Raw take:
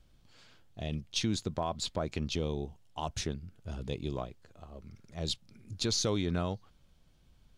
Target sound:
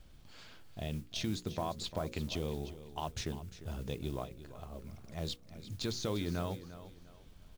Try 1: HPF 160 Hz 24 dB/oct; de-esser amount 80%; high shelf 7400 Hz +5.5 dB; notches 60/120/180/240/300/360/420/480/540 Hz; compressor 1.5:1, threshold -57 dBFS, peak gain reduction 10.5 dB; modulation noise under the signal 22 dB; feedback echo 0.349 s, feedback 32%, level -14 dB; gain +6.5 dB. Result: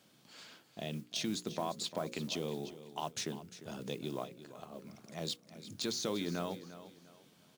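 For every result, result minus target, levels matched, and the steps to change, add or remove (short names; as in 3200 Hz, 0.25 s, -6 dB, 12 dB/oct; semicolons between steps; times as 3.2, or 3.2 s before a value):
125 Hz band -6.5 dB; 8000 Hz band +4.0 dB
remove: HPF 160 Hz 24 dB/oct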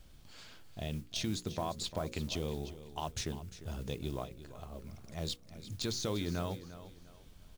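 8000 Hz band +3.5 dB
change: high shelf 7400 Hz -5.5 dB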